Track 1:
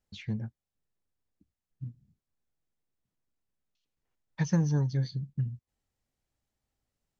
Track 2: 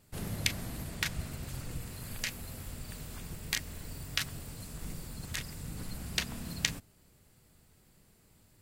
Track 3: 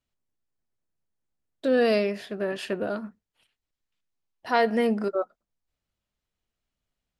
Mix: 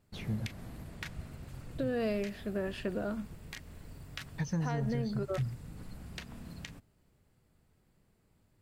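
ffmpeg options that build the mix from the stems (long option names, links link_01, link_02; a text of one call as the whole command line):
ffmpeg -i stem1.wav -i stem2.wav -i stem3.wav -filter_complex "[0:a]volume=-2dB[link_01];[1:a]highshelf=frequency=3300:gain=-11.5,volume=-5dB[link_02];[2:a]bass=frequency=250:gain=8,treble=frequency=4000:gain=-7,acompressor=threshold=-22dB:ratio=6,adelay=150,volume=-6.5dB[link_03];[link_01][link_02][link_03]amix=inputs=3:normalize=0,alimiter=level_in=0.5dB:limit=-24dB:level=0:latency=1:release=182,volume=-0.5dB" out.wav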